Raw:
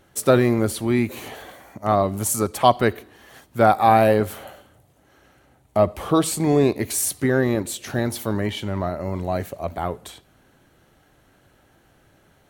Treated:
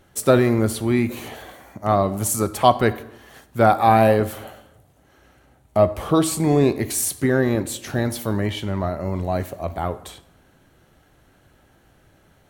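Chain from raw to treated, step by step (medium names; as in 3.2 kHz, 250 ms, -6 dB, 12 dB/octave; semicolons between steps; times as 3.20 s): bass shelf 120 Hz +4.5 dB; plate-style reverb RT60 0.84 s, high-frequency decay 0.6×, DRR 13 dB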